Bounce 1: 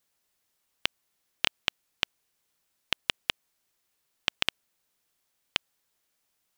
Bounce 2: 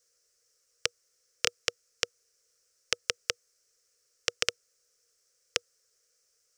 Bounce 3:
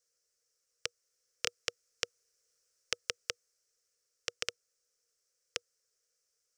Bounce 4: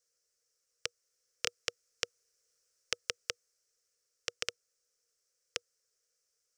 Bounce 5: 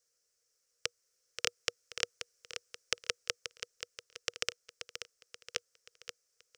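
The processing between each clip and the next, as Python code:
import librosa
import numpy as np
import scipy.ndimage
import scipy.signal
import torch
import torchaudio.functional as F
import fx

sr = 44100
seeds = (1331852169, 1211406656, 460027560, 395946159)

y1 = fx.curve_eq(x, sr, hz=(100.0, 180.0, 310.0, 480.0, 850.0, 1300.0, 3600.0, 5500.0, 8100.0, 12000.0), db=(0, -9, -9, 15, -15, 4, -4, 15, 9, -3))
y1 = y1 * 10.0 ** (-1.5 / 20.0)
y2 = fx.rider(y1, sr, range_db=10, speed_s=2.0)
y2 = y2 * 10.0 ** (-5.5 / 20.0)
y3 = y2
y4 = fx.echo_feedback(y3, sr, ms=531, feedback_pct=46, wet_db=-9.0)
y4 = y4 * 10.0 ** (1.5 / 20.0)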